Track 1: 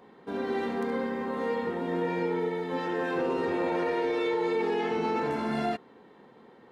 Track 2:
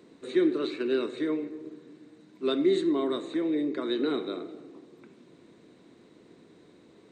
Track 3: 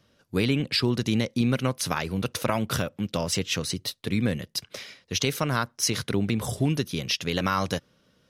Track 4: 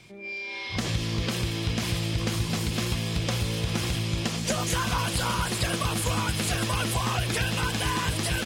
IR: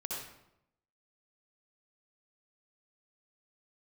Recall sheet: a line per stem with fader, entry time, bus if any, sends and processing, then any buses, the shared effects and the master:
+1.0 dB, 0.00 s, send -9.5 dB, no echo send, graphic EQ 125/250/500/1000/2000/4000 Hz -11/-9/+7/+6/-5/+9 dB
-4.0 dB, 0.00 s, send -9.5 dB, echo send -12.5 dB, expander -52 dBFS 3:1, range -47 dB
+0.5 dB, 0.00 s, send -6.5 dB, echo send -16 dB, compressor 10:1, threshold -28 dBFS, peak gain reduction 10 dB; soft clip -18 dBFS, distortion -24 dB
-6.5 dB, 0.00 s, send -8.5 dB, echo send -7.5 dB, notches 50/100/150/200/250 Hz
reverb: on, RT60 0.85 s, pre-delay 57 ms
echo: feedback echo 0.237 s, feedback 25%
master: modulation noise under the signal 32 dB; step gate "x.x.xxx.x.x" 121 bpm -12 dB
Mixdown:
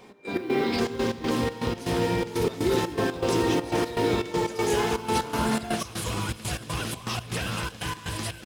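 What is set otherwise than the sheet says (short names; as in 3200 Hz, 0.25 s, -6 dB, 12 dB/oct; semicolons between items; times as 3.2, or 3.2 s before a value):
stem 1: missing graphic EQ 125/250/500/1000/2000/4000 Hz -11/-9/+7/+6/-5/+9 dB; stem 3 +0.5 dB -> -6.5 dB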